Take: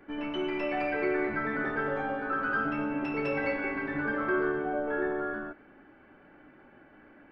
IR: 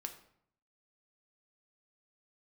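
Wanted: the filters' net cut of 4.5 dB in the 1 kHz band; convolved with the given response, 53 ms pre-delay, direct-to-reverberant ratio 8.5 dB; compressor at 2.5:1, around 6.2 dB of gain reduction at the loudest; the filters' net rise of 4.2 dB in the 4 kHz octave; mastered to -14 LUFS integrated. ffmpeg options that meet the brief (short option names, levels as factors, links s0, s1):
-filter_complex "[0:a]equalizer=f=1000:t=o:g=-7.5,equalizer=f=4000:t=o:g=7.5,acompressor=threshold=0.0178:ratio=2.5,asplit=2[s0][s1];[1:a]atrim=start_sample=2205,adelay=53[s2];[s1][s2]afir=irnorm=-1:irlink=0,volume=0.501[s3];[s0][s3]amix=inputs=2:normalize=0,volume=14.1"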